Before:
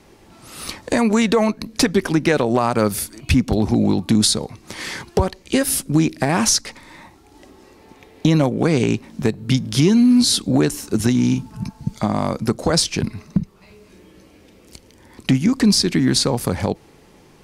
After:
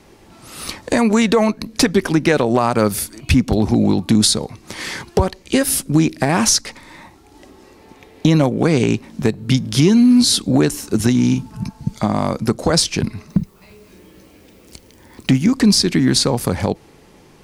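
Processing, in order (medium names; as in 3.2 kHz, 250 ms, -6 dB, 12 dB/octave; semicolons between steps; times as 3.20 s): 13.28–15.51 s: added noise blue -62 dBFS; trim +2 dB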